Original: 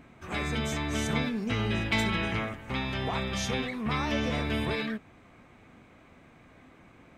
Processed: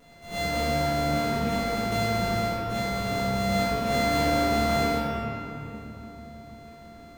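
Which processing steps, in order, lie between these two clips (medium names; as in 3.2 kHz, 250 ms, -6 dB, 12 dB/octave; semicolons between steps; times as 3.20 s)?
sorted samples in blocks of 64 samples; 0.86–3.49 s: compression 2:1, threshold -31 dBFS, peak gain reduction 5.5 dB; reverberation RT60 3.3 s, pre-delay 4 ms, DRR -12.5 dB; trim -8.5 dB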